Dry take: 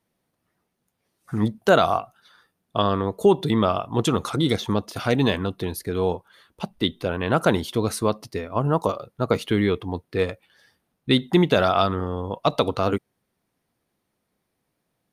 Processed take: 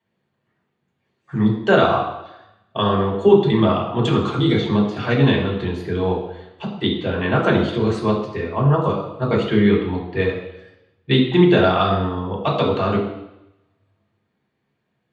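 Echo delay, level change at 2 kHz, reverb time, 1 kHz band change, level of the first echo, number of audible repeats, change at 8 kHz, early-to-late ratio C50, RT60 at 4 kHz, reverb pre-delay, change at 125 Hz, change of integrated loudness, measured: no echo audible, +4.5 dB, 0.90 s, +2.5 dB, no echo audible, no echo audible, below −10 dB, 5.5 dB, 0.90 s, 3 ms, +6.0 dB, +4.0 dB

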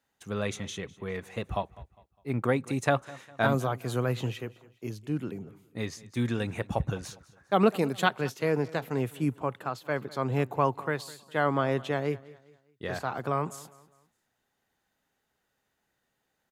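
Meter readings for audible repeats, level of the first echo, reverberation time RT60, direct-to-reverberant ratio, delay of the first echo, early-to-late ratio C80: 2, −20.5 dB, no reverb audible, no reverb audible, 203 ms, no reverb audible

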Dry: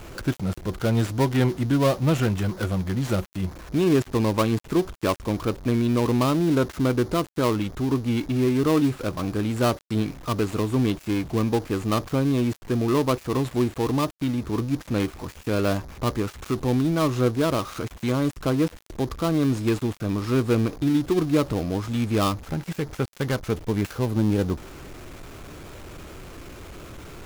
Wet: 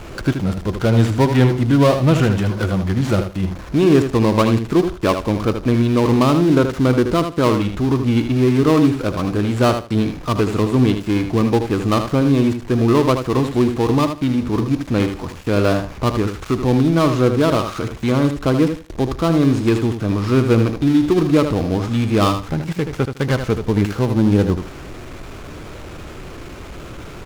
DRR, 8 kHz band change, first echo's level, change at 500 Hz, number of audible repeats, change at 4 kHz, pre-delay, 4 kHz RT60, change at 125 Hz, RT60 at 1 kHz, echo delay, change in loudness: no reverb audible, +3.0 dB, −8.0 dB, +7.0 dB, 2, +6.0 dB, no reverb audible, no reverb audible, +7.5 dB, no reverb audible, 78 ms, +7.0 dB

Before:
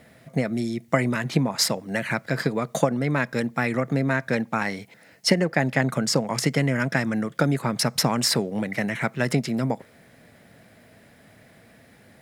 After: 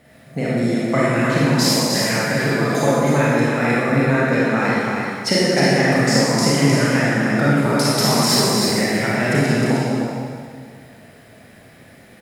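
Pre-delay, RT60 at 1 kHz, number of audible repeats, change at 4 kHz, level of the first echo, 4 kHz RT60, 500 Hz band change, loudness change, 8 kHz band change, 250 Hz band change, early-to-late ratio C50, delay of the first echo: 30 ms, 1.8 s, 1, +7.0 dB, −3.5 dB, 1.8 s, +8.0 dB, +7.0 dB, +7.0 dB, +7.5 dB, −5.5 dB, 310 ms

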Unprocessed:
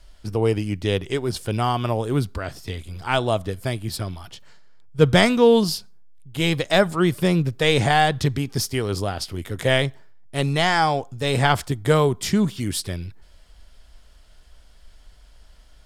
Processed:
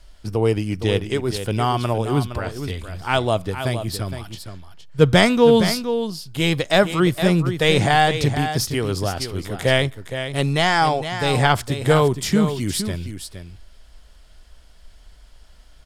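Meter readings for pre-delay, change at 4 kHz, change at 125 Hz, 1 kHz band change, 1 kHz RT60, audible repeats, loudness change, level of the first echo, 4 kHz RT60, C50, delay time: no reverb audible, +2.0 dB, +2.0 dB, +2.0 dB, no reverb audible, 1, +1.5 dB, −9.5 dB, no reverb audible, no reverb audible, 465 ms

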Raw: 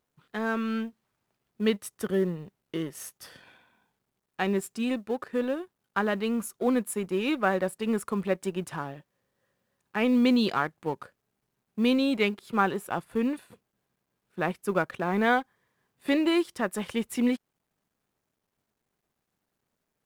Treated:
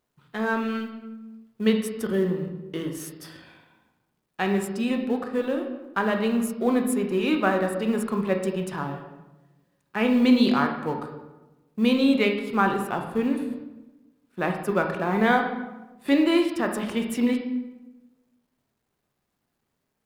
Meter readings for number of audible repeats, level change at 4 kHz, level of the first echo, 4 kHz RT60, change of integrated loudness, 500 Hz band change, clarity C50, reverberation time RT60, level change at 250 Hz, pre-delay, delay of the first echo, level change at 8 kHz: no echo audible, +3.0 dB, no echo audible, 0.70 s, +3.5 dB, +3.5 dB, 10.0 dB, 1.1 s, +4.5 dB, 18 ms, no echo audible, +1.5 dB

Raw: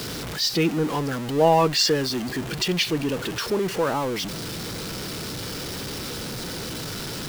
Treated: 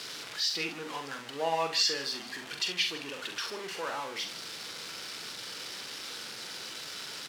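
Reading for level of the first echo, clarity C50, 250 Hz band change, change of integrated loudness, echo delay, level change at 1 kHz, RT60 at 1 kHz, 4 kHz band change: −7.0 dB, no reverb audible, −19.5 dB, −8.5 dB, 43 ms, −10.5 dB, no reverb audible, −5.0 dB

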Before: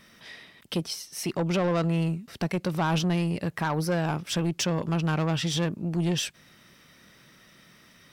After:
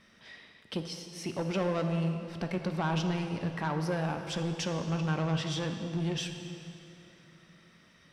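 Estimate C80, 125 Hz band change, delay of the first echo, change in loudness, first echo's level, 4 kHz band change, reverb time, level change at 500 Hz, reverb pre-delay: 7.0 dB, −5.0 dB, no echo audible, −5.0 dB, no echo audible, −6.0 dB, 2.8 s, −4.5 dB, 3 ms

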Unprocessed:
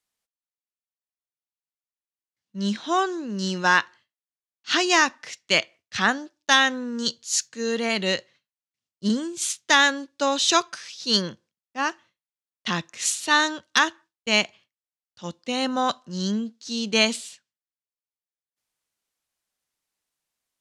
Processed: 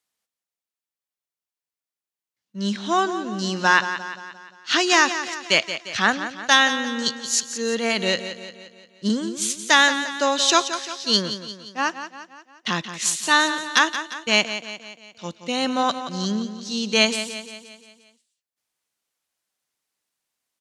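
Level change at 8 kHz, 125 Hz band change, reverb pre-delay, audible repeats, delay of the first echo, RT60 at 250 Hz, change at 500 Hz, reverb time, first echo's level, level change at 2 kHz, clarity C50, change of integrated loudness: +2.5 dB, +0.5 dB, no reverb audible, 5, 175 ms, no reverb audible, +2.0 dB, no reverb audible, −11.0 dB, +2.5 dB, no reverb audible, +2.0 dB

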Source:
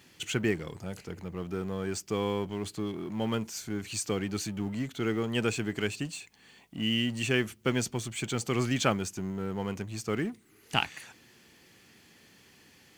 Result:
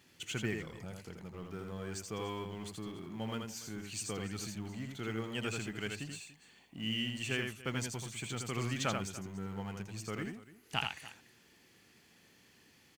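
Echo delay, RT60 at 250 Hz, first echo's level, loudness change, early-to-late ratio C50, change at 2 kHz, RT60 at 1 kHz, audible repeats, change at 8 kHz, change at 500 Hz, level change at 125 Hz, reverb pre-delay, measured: 82 ms, no reverb audible, −4.5 dB, −7.5 dB, no reverb audible, −6.0 dB, no reverb audible, 2, −5.5 dB, −10.0 dB, −6.5 dB, no reverb audible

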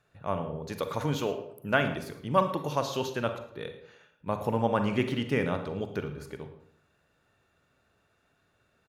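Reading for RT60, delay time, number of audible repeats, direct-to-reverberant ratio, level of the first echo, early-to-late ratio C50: 0.70 s, 111 ms, 1, 7.0 dB, −18.0 dB, 8.5 dB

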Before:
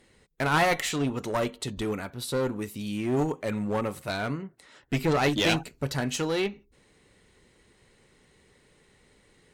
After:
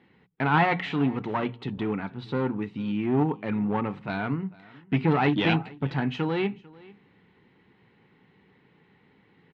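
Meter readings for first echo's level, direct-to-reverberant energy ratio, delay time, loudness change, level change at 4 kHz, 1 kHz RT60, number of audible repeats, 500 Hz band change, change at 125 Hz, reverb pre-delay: −23.0 dB, no reverb audible, 446 ms, +1.0 dB, −5.0 dB, no reverb audible, 1, −1.5 dB, +3.5 dB, no reverb audible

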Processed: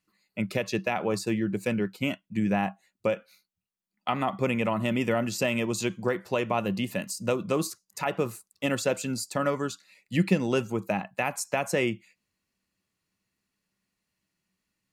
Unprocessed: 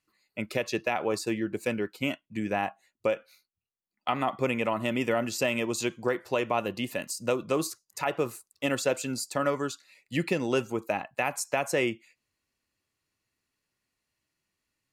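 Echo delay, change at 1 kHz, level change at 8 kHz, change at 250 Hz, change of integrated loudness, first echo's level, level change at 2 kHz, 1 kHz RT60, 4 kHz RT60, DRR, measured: no echo audible, 0.0 dB, 0.0 dB, +3.5 dB, +1.0 dB, no echo audible, 0.0 dB, no reverb audible, no reverb audible, no reverb audible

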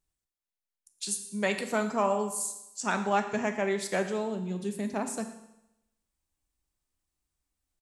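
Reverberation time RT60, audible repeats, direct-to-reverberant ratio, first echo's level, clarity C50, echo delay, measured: 0.85 s, 1, 6.0 dB, −18.0 dB, 9.5 dB, 115 ms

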